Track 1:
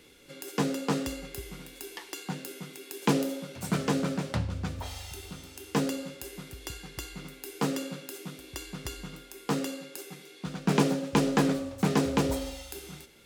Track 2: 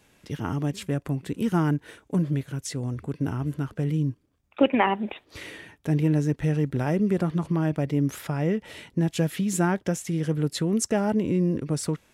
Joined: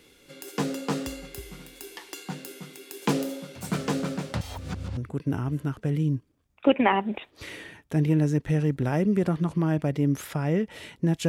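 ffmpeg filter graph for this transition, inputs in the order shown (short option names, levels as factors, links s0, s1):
-filter_complex "[0:a]apad=whole_dur=11.28,atrim=end=11.28,asplit=2[s0][s1];[s0]atrim=end=4.412[s2];[s1]atrim=start=4.408:end=4.972,asetpts=PTS-STARTPTS,areverse[s3];[1:a]atrim=start=2.908:end=9.22[s4];[s2][s3]acrossfade=d=0.004:c1=hsin:c2=hsin[s5];[s5][s4]acrossfade=d=0.004:c1=hsin:c2=hsin"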